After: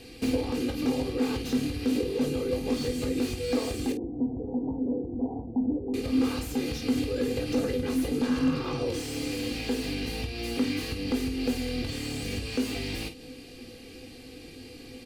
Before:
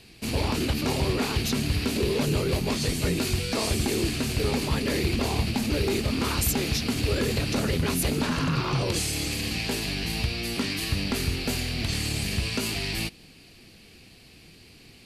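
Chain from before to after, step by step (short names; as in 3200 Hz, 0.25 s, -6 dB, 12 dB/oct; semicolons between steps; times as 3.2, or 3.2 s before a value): comb 2.5 ms, depth 59%; compressor 12:1, threshold -32 dBFS, peak gain reduction 15 dB; 3.92–5.94 rippled Chebyshev low-pass 1000 Hz, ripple 6 dB; small resonant body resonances 260/500 Hz, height 17 dB, ringing for 75 ms; on a send: early reflections 20 ms -8.5 dB, 50 ms -10.5 dB; on the sum: slew limiter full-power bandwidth 71 Hz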